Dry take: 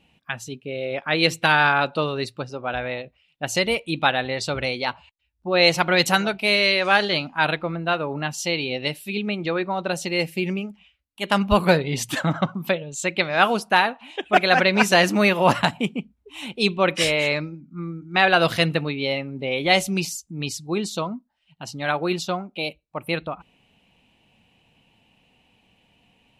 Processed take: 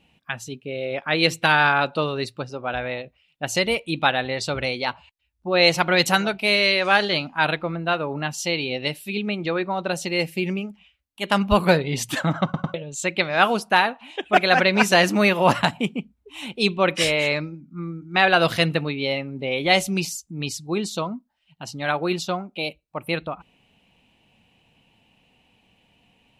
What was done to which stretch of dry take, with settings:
12.44 stutter in place 0.10 s, 3 plays

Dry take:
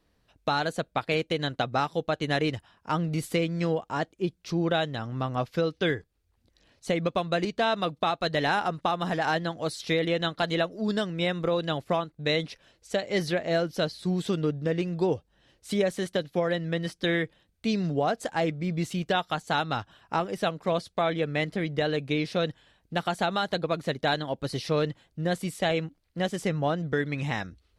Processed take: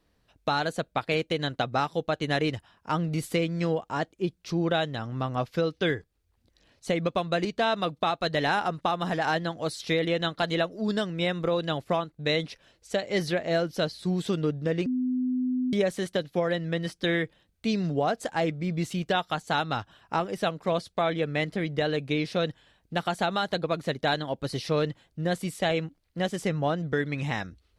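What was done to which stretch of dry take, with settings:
14.86–15.73 bleep 253 Hz -24 dBFS

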